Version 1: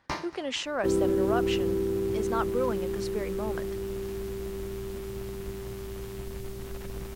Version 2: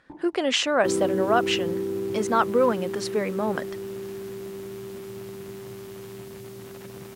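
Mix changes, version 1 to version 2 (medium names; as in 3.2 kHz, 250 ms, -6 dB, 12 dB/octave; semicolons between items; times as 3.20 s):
speech +9.0 dB; first sound: add cascade formant filter u; second sound: add high-pass 110 Hz 24 dB/octave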